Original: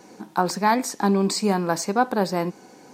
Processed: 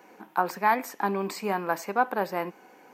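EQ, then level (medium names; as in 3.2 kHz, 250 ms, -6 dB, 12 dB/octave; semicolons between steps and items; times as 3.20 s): high-pass 790 Hz 6 dB/octave; high-order bell 6.1 kHz -13.5 dB; 0.0 dB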